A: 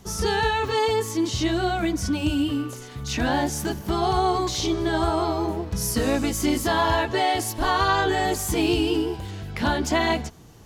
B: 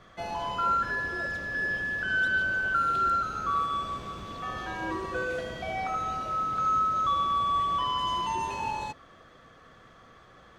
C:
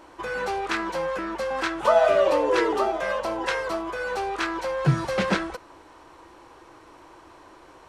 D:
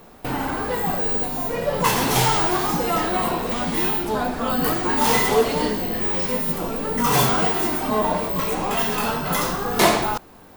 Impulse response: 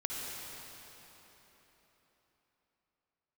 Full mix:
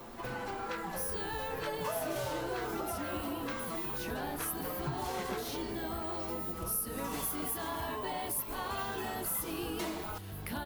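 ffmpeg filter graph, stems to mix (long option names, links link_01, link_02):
-filter_complex "[0:a]aexciter=amount=11.2:drive=5.5:freq=9700,adelay=900,volume=-8dB[link_01];[1:a]volume=-13.5dB[link_02];[2:a]volume=-7dB[link_03];[3:a]acompressor=threshold=-44dB:ratio=1.5,asplit=2[link_04][link_05];[link_05]adelay=5.4,afreqshift=-0.34[link_06];[link_04][link_06]amix=inputs=2:normalize=1,volume=1.5dB[link_07];[link_01][link_02][link_03][link_07]amix=inputs=4:normalize=0,acompressor=threshold=-39dB:ratio=2.5"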